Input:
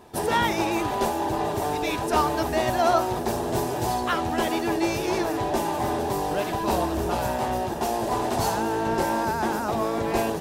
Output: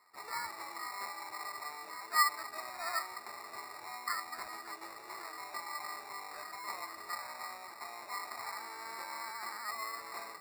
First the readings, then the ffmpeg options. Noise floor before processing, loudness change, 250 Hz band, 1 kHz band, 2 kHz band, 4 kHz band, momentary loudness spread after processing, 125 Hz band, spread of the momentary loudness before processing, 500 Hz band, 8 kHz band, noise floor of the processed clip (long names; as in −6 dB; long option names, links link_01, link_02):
−28 dBFS, −14.5 dB, −34.0 dB, −14.5 dB, −8.5 dB, −10.0 dB, 9 LU, below −35 dB, 4 LU, −27.5 dB, −10.0 dB, −51 dBFS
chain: -af "bandpass=frequency=1200:width_type=q:width=15:csg=0,acrusher=samples=14:mix=1:aa=0.000001,volume=1dB"